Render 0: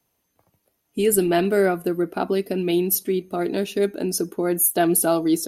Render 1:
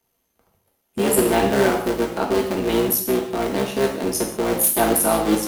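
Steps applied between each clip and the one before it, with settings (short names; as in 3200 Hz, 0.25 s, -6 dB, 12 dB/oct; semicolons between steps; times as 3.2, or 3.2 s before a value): cycle switcher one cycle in 3, muted; non-linear reverb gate 0.22 s falling, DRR 0 dB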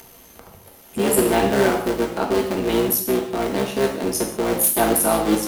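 upward compressor, threshold -26 dBFS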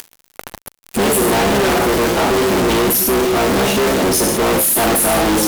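fuzz box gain 43 dB, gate -37 dBFS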